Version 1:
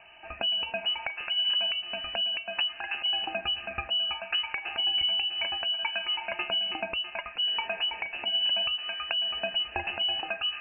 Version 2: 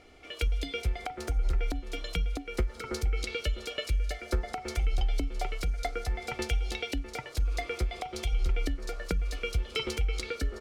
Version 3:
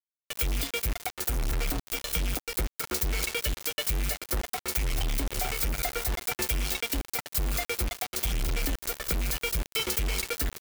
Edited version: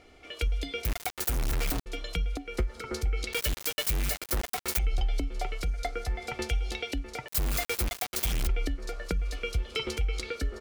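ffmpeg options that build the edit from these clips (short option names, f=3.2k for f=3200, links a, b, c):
-filter_complex "[2:a]asplit=3[a][b][c];[1:a]asplit=4[d][e][f][g];[d]atrim=end=0.852[h];[a]atrim=start=0.848:end=1.862[i];[e]atrim=start=1.858:end=3.332[j];[b]atrim=start=3.328:end=4.792[k];[f]atrim=start=4.788:end=7.282[l];[c]atrim=start=7.278:end=8.472[m];[g]atrim=start=8.468[n];[h][i]acrossfade=d=0.004:c1=hsin:c2=hsin[o];[o][j]acrossfade=d=0.004:c1=hsin:c2=hsin[p];[p][k]acrossfade=d=0.004:c1=hsin:c2=hsin[q];[q][l]acrossfade=d=0.004:c1=hsin:c2=hsin[r];[r][m]acrossfade=d=0.004:c1=hsin:c2=hsin[s];[s][n]acrossfade=d=0.004:c1=hsin:c2=hsin"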